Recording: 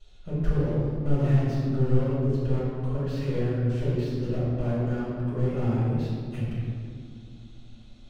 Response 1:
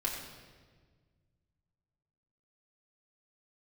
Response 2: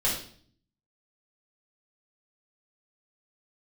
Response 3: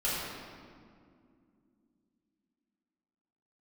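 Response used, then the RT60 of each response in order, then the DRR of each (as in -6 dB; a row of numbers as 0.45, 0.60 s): 3; 1.5, 0.50, 2.3 s; -5.0, -6.5, -10.0 dB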